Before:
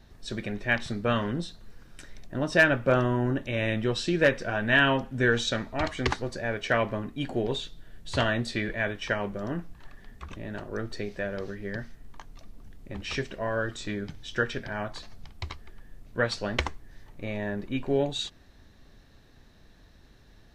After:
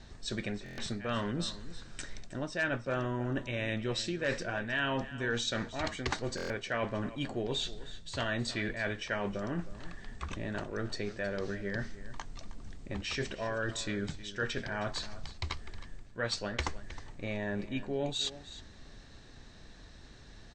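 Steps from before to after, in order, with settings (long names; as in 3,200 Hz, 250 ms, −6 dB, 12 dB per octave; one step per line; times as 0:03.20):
Chebyshev low-pass filter 8,700 Hz, order 10
high-shelf EQ 4,400 Hz +6.5 dB
reversed playback
downward compressor 4 to 1, threshold −36 dBFS, peak gain reduction 17.5 dB
reversed playback
single-tap delay 315 ms −15.5 dB
buffer that repeats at 0:00.64/0:06.36, samples 1,024, times 5
level +3.5 dB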